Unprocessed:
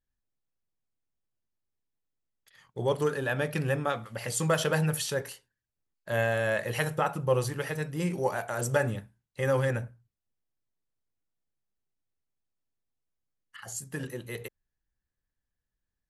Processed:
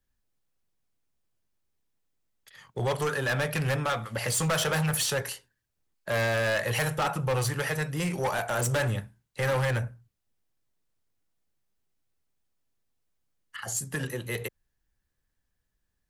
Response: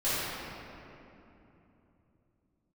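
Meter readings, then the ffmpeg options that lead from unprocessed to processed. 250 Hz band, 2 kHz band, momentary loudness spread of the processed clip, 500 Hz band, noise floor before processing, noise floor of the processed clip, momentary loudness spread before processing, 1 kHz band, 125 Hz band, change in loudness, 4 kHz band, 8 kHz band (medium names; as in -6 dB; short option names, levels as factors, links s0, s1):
0.0 dB, +3.0 dB, 11 LU, -1.0 dB, under -85 dBFS, -80 dBFS, 14 LU, +2.0 dB, +2.0 dB, +1.5 dB, +5.5 dB, +5.0 dB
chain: -filter_complex "[0:a]acrossover=split=150|540|5900[s0][s1][s2][s3];[s1]acompressor=threshold=0.00631:ratio=6[s4];[s0][s4][s2][s3]amix=inputs=4:normalize=0,volume=33.5,asoftclip=hard,volume=0.0299,volume=2.24"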